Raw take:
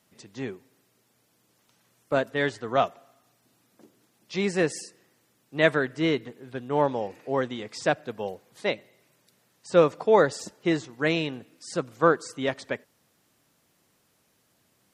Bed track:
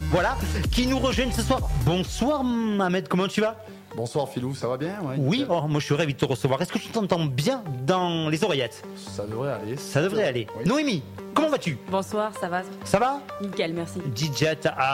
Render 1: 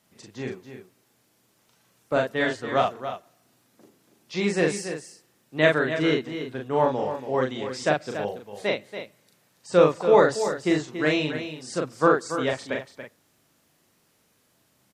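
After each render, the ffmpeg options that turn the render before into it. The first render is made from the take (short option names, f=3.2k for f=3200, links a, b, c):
-filter_complex "[0:a]asplit=2[a][b];[b]adelay=39,volume=-3dB[c];[a][c]amix=inputs=2:normalize=0,aecho=1:1:282:0.316"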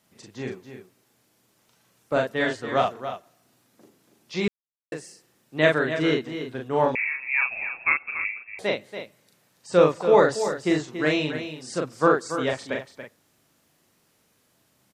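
-filter_complex "[0:a]asettb=1/sr,asplit=3[a][b][c];[a]atrim=end=6.954[d];[b]atrim=start=6.95:end=8.59,asetpts=PTS-STARTPTS,afade=t=in:d=0.004:c=qsin,afade=t=out:st=1.636:d=0.004:c=qsin,lowpass=f=2.4k:t=q:w=0.5098,lowpass=f=2.4k:t=q:w=0.6013,lowpass=f=2.4k:t=q:w=0.9,lowpass=f=2.4k:t=q:w=2.563,afreqshift=-2800[e];[c]atrim=start=8.586[f];[d][e]acrossfade=d=0.004:c1=hsin:c2=qsin[g];[g][f]acrossfade=d=0.004:c1=qsin:c2=hsin,asplit=3[h][i][j];[h]atrim=end=4.48,asetpts=PTS-STARTPTS,afade=t=out:st=4.476:d=0.004:c=hsin[k];[i]atrim=start=4.48:end=4.92,asetpts=PTS-STARTPTS,volume=0[l];[j]atrim=start=4.92,asetpts=PTS-STARTPTS,afade=t=in:d=0.004:c=hsin[m];[k][l][m]concat=n=3:v=0:a=1"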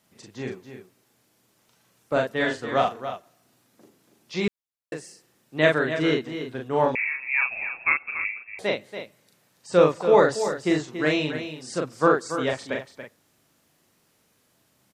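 -filter_complex "[0:a]asettb=1/sr,asplit=3[a][b][c];[a]atrim=end=2.384[d];[b]atrim=start=2.38:end=3.1,asetpts=PTS-STARTPTS,afade=t=in:d=0.004:c=qsin,afade=t=out:st=0.716:d=0.004:c=qsin,asplit=2[e][f];[f]adelay=43,volume=-12dB[g];[e][g]amix=inputs=2:normalize=0,atrim=end_sample=31752[h];[c]atrim=start=3.096[i];[d][h]acrossfade=d=0.004:c1=hsin:c2=qsin[j];[j][i]acrossfade=d=0.004:c1=qsin:c2=hsin"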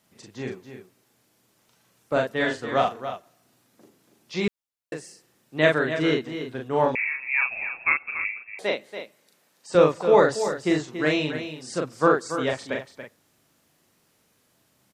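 -filter_complex "[0:a]asettb=1/sr,asplit=3[a][b][c];[a]atrim=end=8.504[d];[b]atrim=start=8.5:end=9.75,asetpts=PTS-STARTPTS,afade=t=in:d=0.004:c=qsin,afade=t=out:st=1.246:d=0.004:c=qsin,highpass=240[e];[c]atrim=start=9.746[f];[d][e]acrossfade=d=0.004:c1=hsin:c2=qsin[g];[g][f]acrossfade=d=0.004:c1=qsin:c2=hsin"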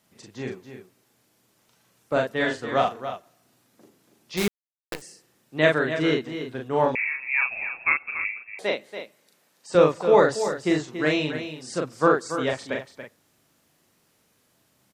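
-filter_complex "[0:a]asettb=1/sr,asplit=3[a][b][c];[a]atrim=end=4.374[d];[b]atrim=start=4.37:end=5.02,asetpts=PTS-STARTPTS,afade=t=in:d=0.004:c=qsin,afade=t=out:st=0.646:d=0.004:c=qsin,acrusher=bits=5:dc=4:mix=0:aa=0.000001[e];[c]atrim=start=5.016[f];[d][e]acrossfade=d=0.004:c1=hsin:c2=qsin[g];[g][f]acrossfade=d=0.004:c1=qsin:c2=hsin"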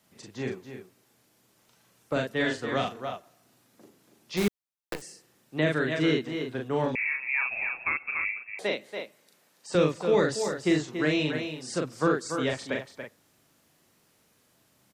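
-filter_complex "[0:a]acrossover=split=400|1700[a][b][c];[b]acompressor=threshold=-32dB:ratio=6[d];[c]alimiter=limit=-23dB:level=0:latency=1:release=23[e];[a][d][e]amix=inputs=3:normalize=0"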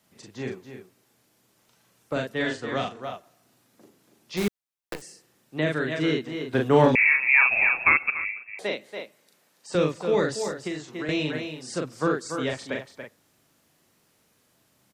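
-filter_complex "[0:a]asettb=1/sr,asplit=3[a][b][c];[a]atrim=end=2.404[d];[b]atrim=start=2.4:end=3.03,asetpts=PTS-STARTPTS,afade=t=in:d=0.004:c=qsin,afade=t=out:st=0.626:d=0.004:c=qsin,lowpass=f=9.6k:w=0.5412,lowpass=f=9.6k:w=1.3066[e];[c]atrim=start=3.026[f];[d][e]acrossfade=d=0.004:c1=hsin:c2=qsin[g];[g][f]acrossfade=d=0.004:c1=qsin:c2=hsin,asettb=1/sr,asplit=3[h][i][j];[h]atrim=end=10.514[k];[i]atrim=start=10.51:end=11.09,asetpts=PTS-STARTPTS,afade=t=in:d=0.004:c=qsin,afade=t=out:st=0.576:d=0.004:c=qsin,acrossover=split=120|570[l][m][n];[l]acompressor=threshold=-55dB:ratio=4[o];[m]acompressor=threshold=-33dB:ratio=4[p];[n]acompressor=threshold=-37dB:ratio=4[q];[o][p][q]amix=inputs=3:normalize=0[r];[j]atrim=start=11.086[s];[k][r]acrossfade=d=0.004:c1=hsin:c2=qsin[t];[t][s]acrossfade=d=0.004:c1=qsin:c2=hsin,asplit=3[u][v][w];[u]atrim=end=6.532[x];[v]atrim=start=6.528:end=8.102,asetpts=PTS-STARTPTS,volume=10dB[y];[w]atrim=start=8.098[z];[x][y]acrossfade=d=0.004:c1=hsin:c2=hsin[aa];[aa][z]acrossfade=d=0.004:c1=hsin:c2=hsin"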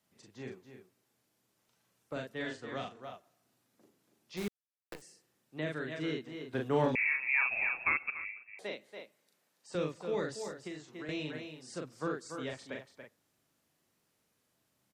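-af "volume=-11.5dB"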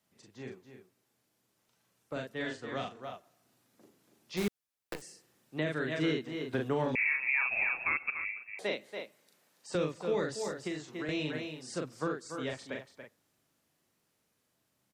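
-af "alimiter=level_in=3.5dB:limit=-24dB:level=0:latency=1:release=354,volume=-3.5dB,dynaudnorm=f=520:g=13:m=6.5dB"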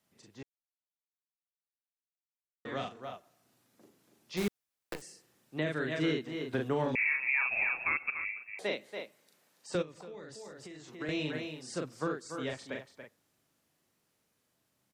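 -filter_complex "[0:a]asplit=3[a][b][c];[a]afade=t=out:st=9.81:d=0.02[d];[b]acompressor=threshold=-46dB:ratio=4:attack=3.2:release=140:knee=1:detection=peak,afade=t=in:st=9.81:d=0.02,afade=t=out:st=11:d=0.02[e];[c]afade=t=in:st=11:d=0.02[f];[d][e][f]amix=inputs=3:normalize=0,asplit=3[g][h][i];[g]atrim=end=0.43,asetpts=PTS-STARTPTS,afade=t=out:st=0.426:d=0.004:c=hsin[j];[h]atrim=start=0.43:end=2.65,asetpts=PTS-STARTPTS,volume=0[k];[i]atrim=start=2.65,asetpts=PTS-STARTPTS,afade=t=in:d=0.004:c=hsin[l];[j][k][l]concat=n=3:v=0:a=1"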